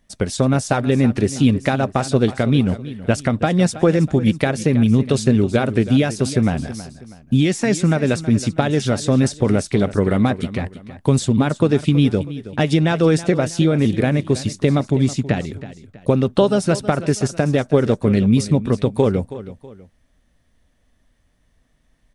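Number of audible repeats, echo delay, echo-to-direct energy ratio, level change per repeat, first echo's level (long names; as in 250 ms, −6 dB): 2, 323 ms, −14.5 dB, −8.5 dB, −15.0 dB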